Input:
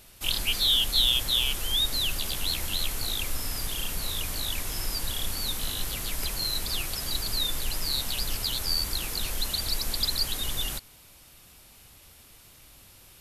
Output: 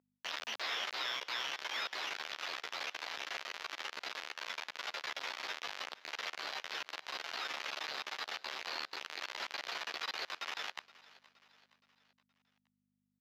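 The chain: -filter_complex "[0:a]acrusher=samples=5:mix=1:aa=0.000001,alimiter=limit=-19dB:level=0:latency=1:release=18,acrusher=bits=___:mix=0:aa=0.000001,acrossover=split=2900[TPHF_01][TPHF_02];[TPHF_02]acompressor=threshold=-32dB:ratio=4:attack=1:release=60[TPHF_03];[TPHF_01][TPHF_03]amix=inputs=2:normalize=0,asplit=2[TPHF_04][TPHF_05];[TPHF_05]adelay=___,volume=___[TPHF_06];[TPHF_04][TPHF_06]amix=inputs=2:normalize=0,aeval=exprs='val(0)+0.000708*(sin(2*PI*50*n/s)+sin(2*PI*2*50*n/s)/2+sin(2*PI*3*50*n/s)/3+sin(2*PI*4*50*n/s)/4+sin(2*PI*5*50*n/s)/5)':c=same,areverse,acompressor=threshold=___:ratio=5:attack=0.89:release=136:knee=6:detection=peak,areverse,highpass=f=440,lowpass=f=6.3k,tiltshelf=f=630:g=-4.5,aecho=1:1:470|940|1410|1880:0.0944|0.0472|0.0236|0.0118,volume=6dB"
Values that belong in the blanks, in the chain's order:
3, 13, -4.5dB, -43dB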